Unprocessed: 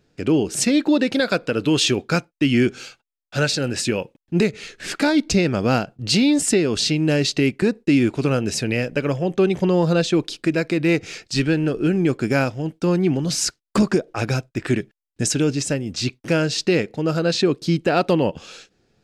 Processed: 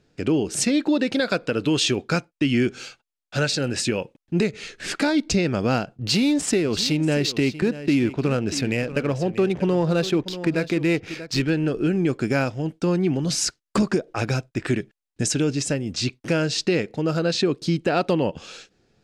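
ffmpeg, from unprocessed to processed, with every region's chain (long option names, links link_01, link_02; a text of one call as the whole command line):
ffmpeg -i in.wav -filter_complex "[0:a]asettb=1/sr,asplit=3[link_01][link_02][link_03];[link_01]atrim=end=5.994[link_04];[link_02]atrim=start=5.99:end=11.5,asetpts=PTS-STARTPTS,afade=type=in:duration=0.004:curve=qsin,afade=type=out:start_time=5.506:duration=0.004:curve=qsin,adynamicsmooth=sensitivity=6:basefreq=2400,aecho=1:1:637:0.178,atrim=end_sample=242991[link_05];[link_03]atrim=start=11.496[link_06];[link_04][link_05]acrossfade=duration=0.004:curve1=hsin:curve2=qsin[link_07];[link_07][link_06]acrossfade=duration=0.004:curve1=qsin:curve2=hsin,lowpass=11000,acompressor=threshold=-22dB:ratio=1.5" out.wav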